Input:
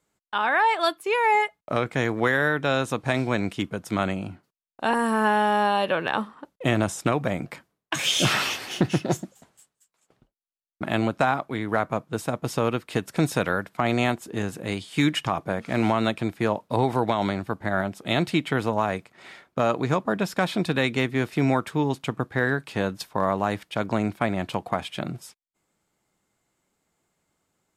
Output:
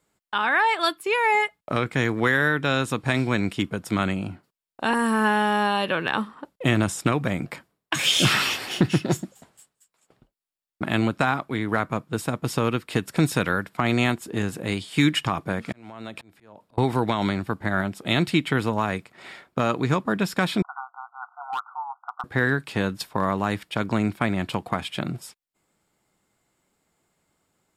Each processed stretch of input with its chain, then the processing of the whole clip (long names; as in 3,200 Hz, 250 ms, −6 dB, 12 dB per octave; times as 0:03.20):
0:15.72–0:16.78: downward compressor 10 to 1, threshold −31 dBFS + volume swells 461 ms
0:20.62–0:22.24: linear-phase brick-wall band-pass 700–1,500 Hz + hard clipping −22.5 dBFS
whole clip: notch filter 6,200 Hz, Q 11; dynamic equaliser 650 Hz, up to −7 dB, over −37 dBFS, Q 1.3; level +3 dB